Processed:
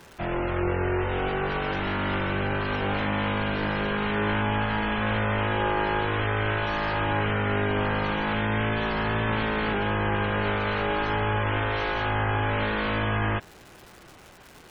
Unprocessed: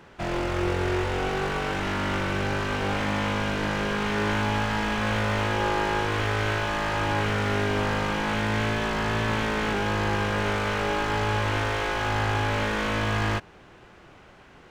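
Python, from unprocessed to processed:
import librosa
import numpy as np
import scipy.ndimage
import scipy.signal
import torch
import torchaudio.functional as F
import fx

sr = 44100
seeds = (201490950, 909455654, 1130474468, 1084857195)

y = fx.dmg_crackle(x, sr, seeds[0], per_s=440.0, level_db=-38.0)
y = fx.spec_gate(y, sr, threshold_db=-25, keep='strong')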